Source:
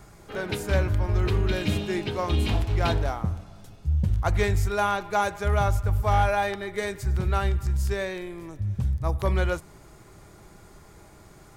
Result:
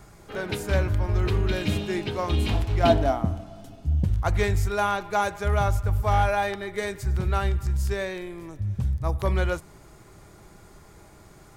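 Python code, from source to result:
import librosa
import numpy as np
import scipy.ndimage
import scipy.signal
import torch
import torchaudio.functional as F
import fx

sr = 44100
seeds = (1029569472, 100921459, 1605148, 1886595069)

y = fx.small_body(x, sr, hz=(270.0, 660.0, 3000.0), ring_ms=45, db=13, at=(2.83, 4.04))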